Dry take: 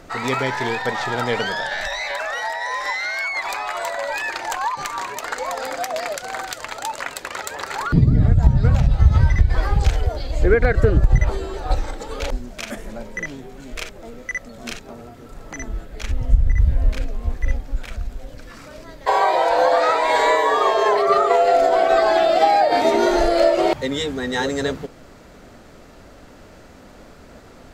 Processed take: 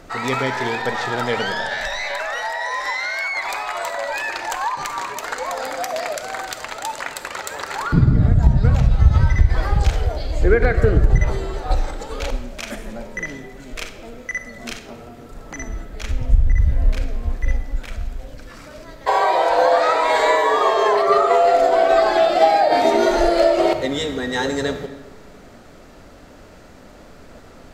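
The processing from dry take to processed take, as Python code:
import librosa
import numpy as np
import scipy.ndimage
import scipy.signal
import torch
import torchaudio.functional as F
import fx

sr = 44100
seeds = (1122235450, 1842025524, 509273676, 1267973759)

y = fx.rev_freeverb(x, sr, rt60_s=1.3, hf_ratio=0.7, predelay_ms=10, drr_db=9.0)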